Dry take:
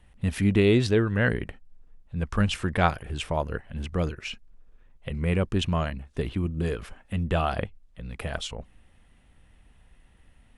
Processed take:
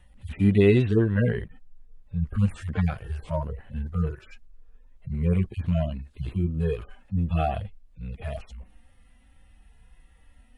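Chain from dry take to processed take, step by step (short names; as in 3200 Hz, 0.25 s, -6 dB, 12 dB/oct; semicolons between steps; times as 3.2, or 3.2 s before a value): median-filter separation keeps harmonic; gain +3 dB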